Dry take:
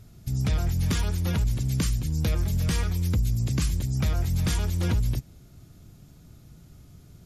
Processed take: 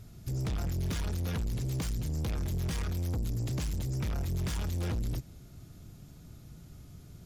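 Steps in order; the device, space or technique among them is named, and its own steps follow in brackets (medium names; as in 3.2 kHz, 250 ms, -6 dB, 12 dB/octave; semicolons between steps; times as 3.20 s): saturation between pre-emphasis and de-emphasis (treble shelf 4.8 kHz +10.5 dB; saturation -29.5 dBFS, distortion -9 dB; treble shelf 4.8 kHz -10.5 dB)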